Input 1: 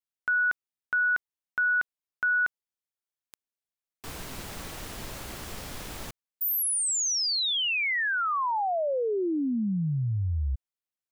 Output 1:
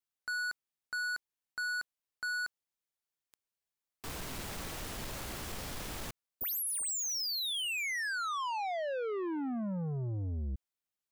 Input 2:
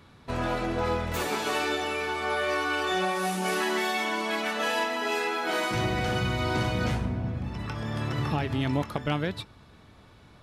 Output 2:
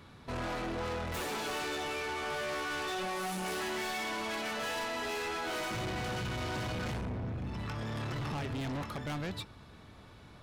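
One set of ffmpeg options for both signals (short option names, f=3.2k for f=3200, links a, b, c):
-af "asoftclip=type=tanh:threshold=-34dB"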